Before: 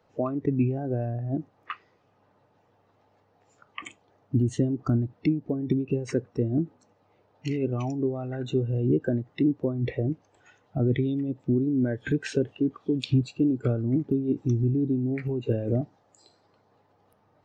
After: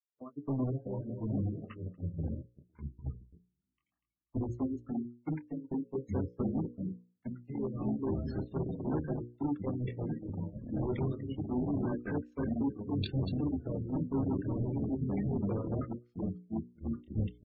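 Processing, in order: chorus 0.44 Hz, delay 19 ms, depth 7.1 ms; ever faster or slower copies 611 ms, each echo -4 st, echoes 3; peaking EQ 760 Hz -10 dB 0.31 oct; waveshaping leveller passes 1; feedback delay 242 ms, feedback 40%, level -8.5 dB; in parallel at -9 dB: integer overflow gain 18.5 dB; on the sum: gate -22 dBFS, range -45 dB; spectral gate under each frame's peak -25 dB strong; treble shelf 3.3 kHz +9.5 dB; hum notches 60/120/180/240/300/360/420/480/540 Hz; trim -9 dB

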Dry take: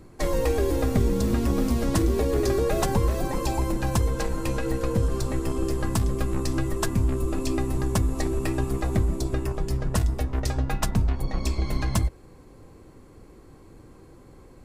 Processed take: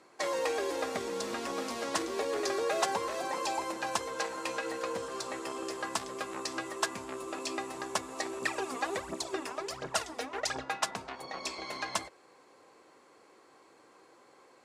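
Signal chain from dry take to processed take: 8.42–10.63 s: phaser 1.4 Hz, delay 4.4 ms, feedback 71%; band-pass 660–7500 Hz

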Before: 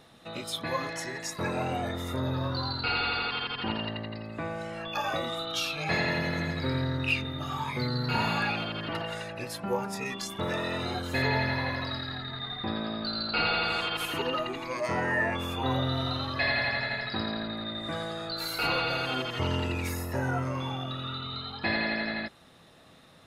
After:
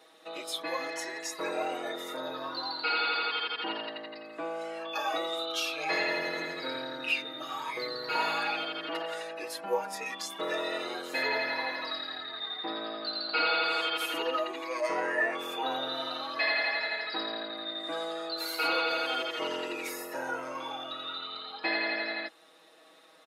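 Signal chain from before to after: high-pass 310 Hz 24 dB/octave; comb 6.3 ms, depth 91%; trim -3.5 dB

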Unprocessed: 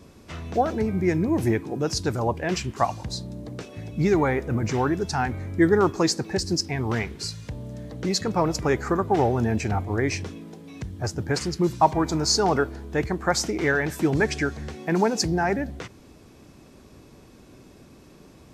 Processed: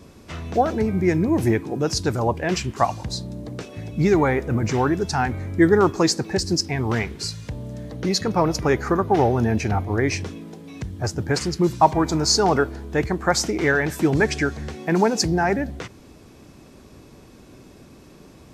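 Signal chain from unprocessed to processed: 7.96–10.13 s: band-stop 7.6 kHz, Q 5.8; trim +3 dB

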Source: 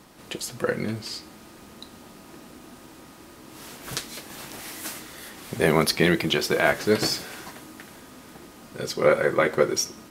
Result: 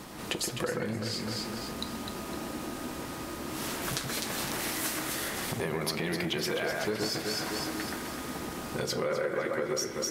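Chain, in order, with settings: peak limiter -12.5 dBFS, peak gain reduction 9.5 dB; on a send: echo whose repeats swap between lows and highs 127 ms, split 2.1 kHz, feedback 61%, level -2.5 dB; on the sum: compression 5:1, threshold -36 dBFS, peak gain reduction 17 dB; transformer saturation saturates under 830 Hz; trim +7 dB

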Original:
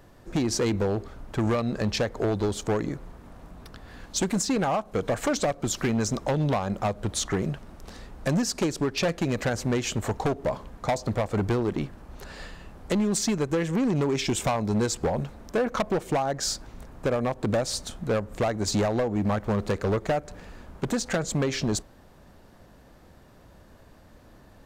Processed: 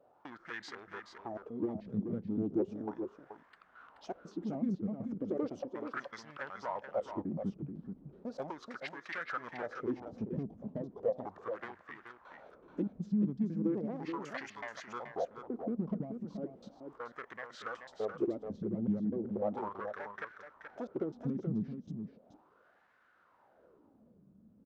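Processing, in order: slices played last to first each 125 ms, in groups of 2; wah-wah 0.36 Hz 210–2100 Hz, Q 4.5; formant shift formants -3 st; delay 429 ms -7.5 dB

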